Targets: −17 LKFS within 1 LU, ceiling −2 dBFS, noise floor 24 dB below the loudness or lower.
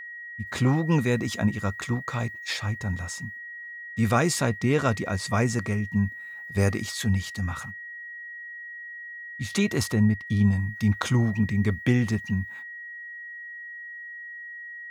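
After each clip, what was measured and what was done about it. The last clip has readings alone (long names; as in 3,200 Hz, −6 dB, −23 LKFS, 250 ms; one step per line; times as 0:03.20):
interfering tone 1,900 Hz; level of the tone −37 dBFS; integrated loudness −26.0 LKFS; sample peak −10.0 dBFS; target loudness −17.0 LKFS
→ notch filter 1,900 Hz, Q 30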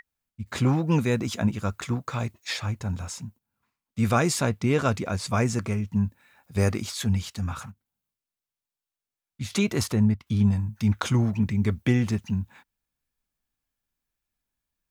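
interfering tone none found; integrated loudness −26.0 LKFS; sample peak −10.0 dBFS; target loudness −17.0 LKFS
→ level +9 dB
brickwall limiter −2 dBFS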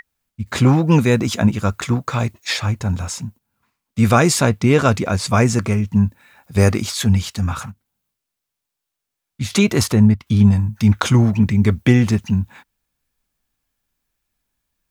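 integrated loudness −17.0 LKFS; sample peak −2.0 dBFS; background noise floor −81 dBFS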